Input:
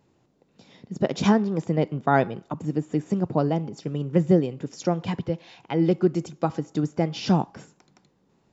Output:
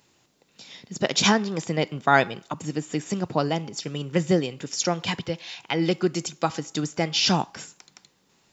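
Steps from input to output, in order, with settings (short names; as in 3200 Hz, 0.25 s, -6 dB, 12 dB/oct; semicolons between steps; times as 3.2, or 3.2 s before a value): tilt shelf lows -9.5 dB, about 1300 Hz; gain +5.5 dB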